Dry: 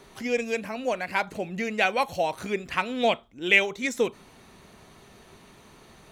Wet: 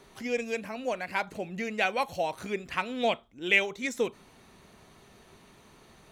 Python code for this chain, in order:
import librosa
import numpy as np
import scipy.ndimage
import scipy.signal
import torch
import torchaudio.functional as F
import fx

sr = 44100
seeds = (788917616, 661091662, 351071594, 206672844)

y = x * librosa.db_to_amplitude(-4.0)